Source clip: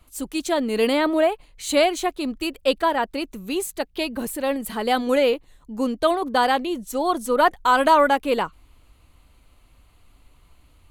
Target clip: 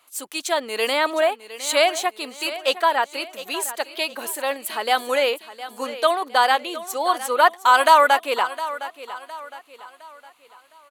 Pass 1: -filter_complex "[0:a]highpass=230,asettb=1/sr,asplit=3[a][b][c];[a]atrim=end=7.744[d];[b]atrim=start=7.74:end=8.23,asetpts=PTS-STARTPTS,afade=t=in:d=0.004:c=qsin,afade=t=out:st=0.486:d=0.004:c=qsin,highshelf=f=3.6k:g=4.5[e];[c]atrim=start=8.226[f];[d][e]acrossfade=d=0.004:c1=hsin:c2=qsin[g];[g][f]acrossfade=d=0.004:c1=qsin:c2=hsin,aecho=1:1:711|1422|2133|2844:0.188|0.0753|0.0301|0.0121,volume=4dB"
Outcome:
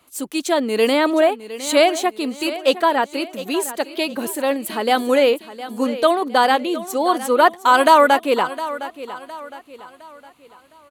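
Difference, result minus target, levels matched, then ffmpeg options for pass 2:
250 Hz band +11.0 dB
-filter_complex "[0:a]highpass=710,asettb=1/sr,asplit=3[a][b][c];[a]atrim=end=7.744[d];[b]atrim=start=7.74:end=8.23,asetpts=PTS-STARTPTS,afade=t=in:d=0.004:c=qsin,afade=t=out:st=0.486:d=0.004:c=qsin,highshelf=f=3.6k:g=4.5[e];[c]atrim=start=8.226[f];[d][e]acrossfade=d=0.004:c1=hsin:c2=qsin[g];[g][f]acrossfade=d=0.004:c1=qsin:c2=hsin,aecho=1:1:711|1422|2133|2844:0.188|0.0753|0.0301|0.0121,volume=4dB"

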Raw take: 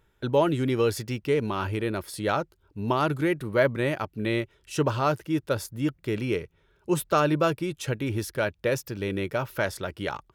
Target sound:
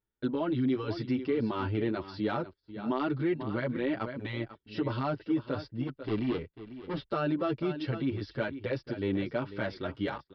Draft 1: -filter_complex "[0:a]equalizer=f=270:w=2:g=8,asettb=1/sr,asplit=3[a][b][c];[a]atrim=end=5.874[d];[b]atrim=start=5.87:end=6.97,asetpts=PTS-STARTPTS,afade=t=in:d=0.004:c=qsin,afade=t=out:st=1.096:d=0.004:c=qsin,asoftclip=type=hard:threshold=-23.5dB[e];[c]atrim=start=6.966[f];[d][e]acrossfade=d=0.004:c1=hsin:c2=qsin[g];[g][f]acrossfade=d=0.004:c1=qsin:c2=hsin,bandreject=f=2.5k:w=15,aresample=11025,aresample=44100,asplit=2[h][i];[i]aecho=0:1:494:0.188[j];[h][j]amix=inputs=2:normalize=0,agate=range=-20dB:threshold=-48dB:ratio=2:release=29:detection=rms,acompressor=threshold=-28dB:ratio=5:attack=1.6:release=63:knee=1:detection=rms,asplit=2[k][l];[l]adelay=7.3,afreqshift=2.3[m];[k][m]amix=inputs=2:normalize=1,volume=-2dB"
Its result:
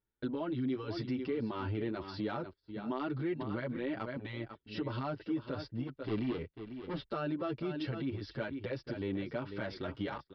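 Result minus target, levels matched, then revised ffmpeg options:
compressor: peak gain reduction +6 dB
-filter_complex "[0:a]equalizer=f=270:w=2:g=8,asettb=1/sr,asplit=3[a][b][c];[a]atrim=end=5.874[d];[b]atrim=start=5.87:end=6.97,asetpts=PTS-STARTPTS,afade=t=in:d=0.004:c=qsin,afade=t=out:st=1.096:d=0.004:c=qsin,asoftclip=type=hard:threshold=-23.5dB[e];[c]atrim=start=6.966[f];[d][e]acrossfade=d=0.004:c1=hsin:c2=qsin[g];[g][f]acrossfade=d=0.004:c1=qsin:c2=hsin,bandreject=f=2.5k:w=15,aresample=11025,aresample=44100,asplit=2[h][i];[i]aecho=0:1:494:0.188[j];[h][j]amix=inputs=2:normalize=0,agate=range=-20dB:threshold=-48dB:ratio=2:release=29:detection=rms,acompressor=threshold=-20.5dB:ratio=5:attack=1.6:release=63:knee=1:detection=rms,asplit=2[k][l];[l]adelay=7.3,afreqshift=2.3[m];[k][m]amix=inputs=2:normalize=1,volume=-2dB"

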